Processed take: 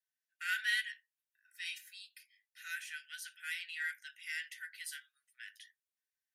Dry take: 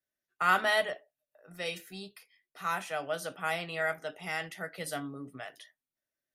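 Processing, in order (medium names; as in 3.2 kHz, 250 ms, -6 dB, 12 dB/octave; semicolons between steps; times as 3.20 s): Chebyshev shaper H 8 -34 dB, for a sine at -13 dBFS; Chebyshev high-pass 1.5 kHz, order 8; trim -3 dB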